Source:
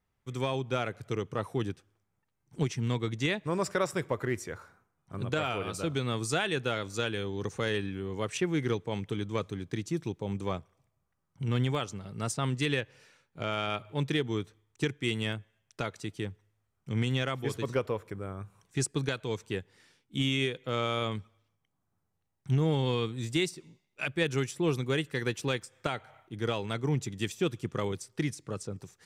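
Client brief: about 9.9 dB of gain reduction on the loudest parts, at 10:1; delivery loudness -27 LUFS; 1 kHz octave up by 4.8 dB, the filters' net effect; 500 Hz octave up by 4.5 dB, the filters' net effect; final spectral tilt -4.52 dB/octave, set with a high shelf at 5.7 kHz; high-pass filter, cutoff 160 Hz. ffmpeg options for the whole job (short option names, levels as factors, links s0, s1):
-af "highpass=160,equalizer=f=500:t=o:g=4.5,equalizer=f=1000:t=o:g=5.5,highshelf=f=5700:g=-7,acompressor=threshold=0.0316:ratio=10,volume=3.16"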